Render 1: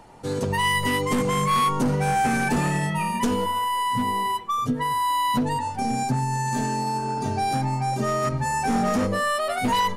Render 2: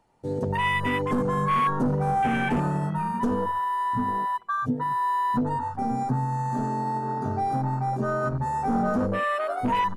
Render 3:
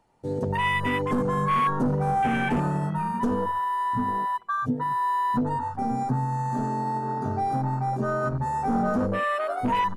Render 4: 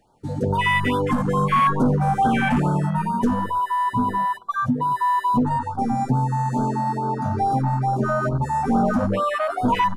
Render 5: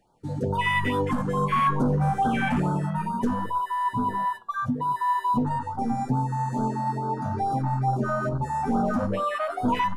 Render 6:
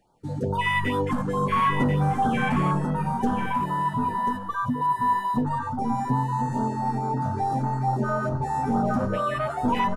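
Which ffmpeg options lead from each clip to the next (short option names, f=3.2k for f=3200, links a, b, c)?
-af "afwtdn=0.0501,volume=-1.5dB"
-af anull
-af "afftfilt=real='re*(1-between(b*sr/1024,340*pow(2300/340,0.5+0.5*sin(2*PI*2.3*pts/sr))/1.41,340*pow(2300/340,0.5+0.5*sin(2*PI*2.3*pts/sr))*1.41))':imag='im*(1-between(b*sr/1024,340*pow(2300/340,0.5+0.5*sin(2*PI*2.3*pts/sr))/1.41,340*pow(2300/340,0.5+0.5*sin(2*PI*2.3*pts/sr))*1.41))':win_size=1024:overlap=0.75,volume=5.5dB"
-af "flanger=delay=5.3:depth=9.1:regen=80:speed=0.27:shape=triangular"
-af "aecho=1:1:1039:0.447"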